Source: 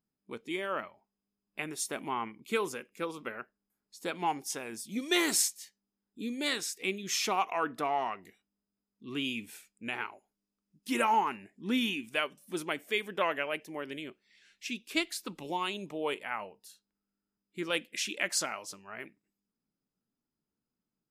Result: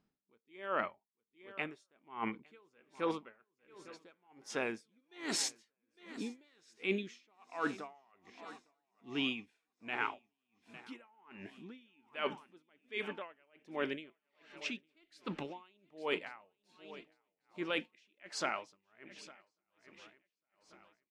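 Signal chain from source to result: LPF 5200 Hz 12 dB/oct; tone controls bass -3 dB, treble -6 dB; reverse; compressor 6:1, threshold -43 dBFS, peak gain reduction 18.5 dB; reverse; swung echo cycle 1.142 s, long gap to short 3:1, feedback 43%, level -17.5 dB; dB-linear tremolo 1.3 Hz, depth 37 dB; gain +12 dB

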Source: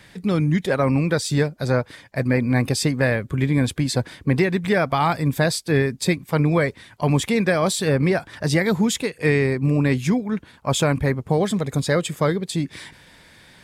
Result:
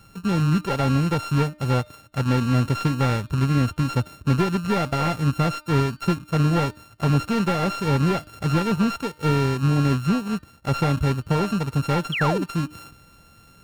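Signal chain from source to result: sample sorter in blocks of 32 samples; low shelf 180 Hz +8.5 dB; de-hum 302.9 Hz, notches 16; painted sound fall, 12.12–12.44, 240–3500 Hz -21 dBFS; slew limiter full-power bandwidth 360 Hz; gain -4.5 dB

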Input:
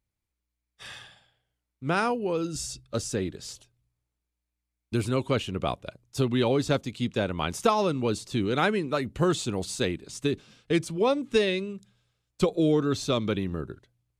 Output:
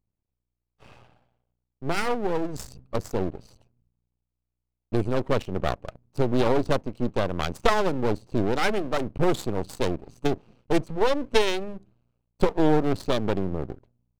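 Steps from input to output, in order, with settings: Wiener smoothing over 25 samples; vibrato 0.72 Hz 7.2 cents; half-wave rectifier; gain +7 dB

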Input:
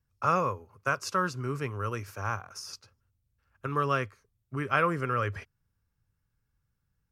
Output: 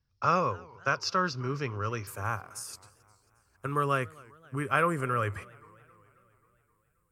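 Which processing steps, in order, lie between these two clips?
resonant high shelf 6800 Hz -10.5 dB, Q 3, from 2.07 s +6.5 dB; warbling echo 0.266 s, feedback 59%, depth 194 cents, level -24 dB

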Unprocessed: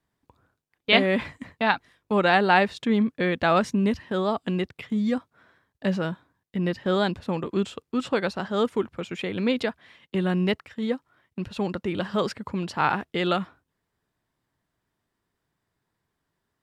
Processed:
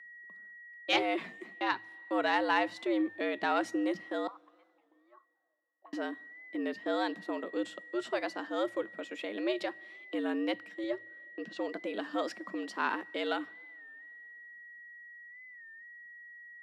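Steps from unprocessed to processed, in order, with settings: one diode to ground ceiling -4 dBFS; whine 1800 Hz -41 dBFS; 4.27–5.93 auto-wah 390–1000 Hz, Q 16, up, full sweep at -26.5 dBFS; two-slope reverb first 0.27 s, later 2.6 s, from -19 dB, DRR 17.5 dB; frequency shift +110 Hz; 10.84–11.74 speaker cabinet 110–7600 Hz, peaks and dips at 110 Hz +9 dB, 280 Hz -4 dB, 450 Hz +5 dB, 910 Hz -4 dB; record warp 33 1/3 rpm, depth 100 cents; gain -8.5 dB

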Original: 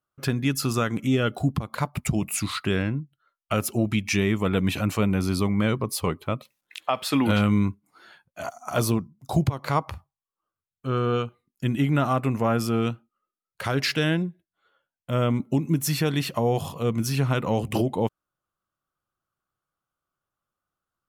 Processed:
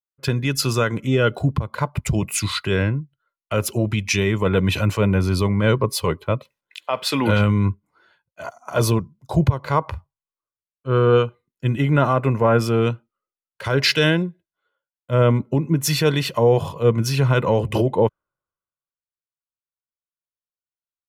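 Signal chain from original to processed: limiter -15 dBFS, peak gain reduction 5 dB; high shelf 6000 Hz -10 dB; comb 2 ms, depth 43%; three-band expander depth 70%; gain +6.5 dB

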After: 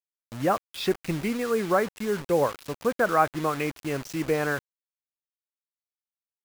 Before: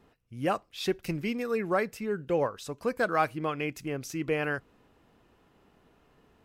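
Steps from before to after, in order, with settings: treble ducked by the level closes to 1400 Hz, closed at -26 dBFS; bit-crush 7-bit; dynamic EQ 1500 Hz, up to +4 dB, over -41 dBFS, Q 0.77; gain +3.5 dB

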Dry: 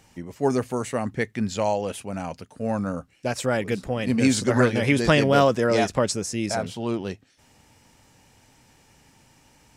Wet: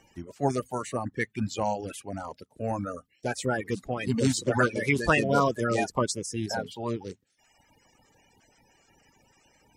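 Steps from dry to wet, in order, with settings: bin magnitudes rounded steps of 30 dB; reverb removal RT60 0.95 s; gain -3 dB

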